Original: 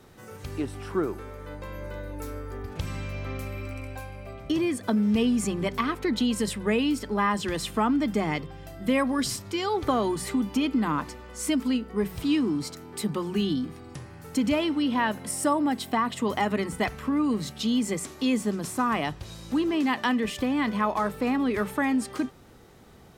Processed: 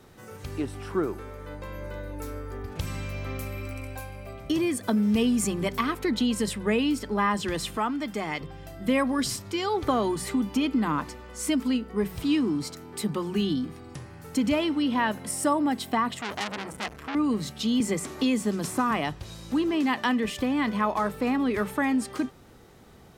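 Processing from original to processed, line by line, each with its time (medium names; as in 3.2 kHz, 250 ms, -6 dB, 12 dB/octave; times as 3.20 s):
2.79–6.12 s: treble shelf 8 kHz +8.5 dB
7.77–8.41 s: bass shelf 430 Hz -9.5 dB
16.17–17.15 s: transformer saturation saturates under 3.9 kHz
17.80–18.91 s: three bands compressed up and down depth 70%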